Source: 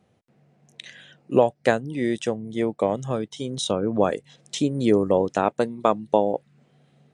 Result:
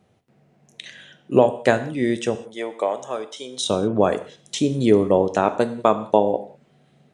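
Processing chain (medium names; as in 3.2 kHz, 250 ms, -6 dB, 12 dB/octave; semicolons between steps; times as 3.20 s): 2.35–3.62 s: high-pass 540 Hz 12 dB/octave; gated-style reverb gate 220 ms falling, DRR 9.5 dB; trim +2.5 dB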